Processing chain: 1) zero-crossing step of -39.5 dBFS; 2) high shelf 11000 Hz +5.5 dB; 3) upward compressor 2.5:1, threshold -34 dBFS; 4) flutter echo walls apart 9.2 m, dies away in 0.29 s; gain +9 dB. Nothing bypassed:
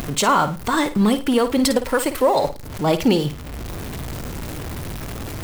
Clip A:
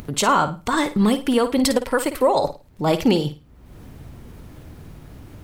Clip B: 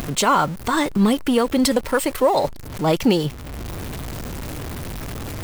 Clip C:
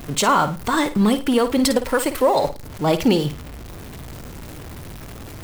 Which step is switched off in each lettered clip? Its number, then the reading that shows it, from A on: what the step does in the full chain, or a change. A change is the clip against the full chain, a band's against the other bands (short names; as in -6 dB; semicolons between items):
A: 1, distortion -16 dB; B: 4, echo-to-direct -11.0 dB to none; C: 3, momentary loudness spread change +6 LU